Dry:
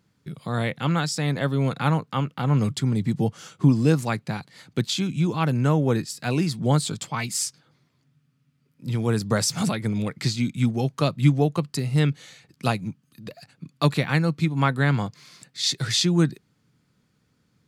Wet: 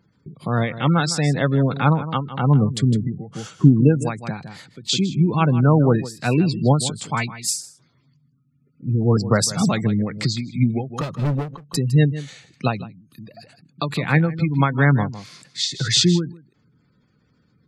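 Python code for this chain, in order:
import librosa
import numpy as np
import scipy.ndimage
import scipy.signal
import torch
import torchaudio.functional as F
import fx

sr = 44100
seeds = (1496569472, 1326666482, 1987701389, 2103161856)

p1 = fx.spec_gate(x, sr, threshold_db=-25, keep='strong')
p2 = fx.dispersion(p1, sr, late='highs', ms=136.0, hz=1500.0, at=(7.28, 9.17))
p3 = fx.overload_stage(p2, sr, gain_db=24.0, at=(10.93, 11.75))
p4 = p3 + fx.echo_single(p3, sr, ms=158, db=-14.0, dry=0)
p5 = fx.end_taper(p4, sr, db_per_s=130.0)
y = p5 * librosa.db_to_amplitude(5.5)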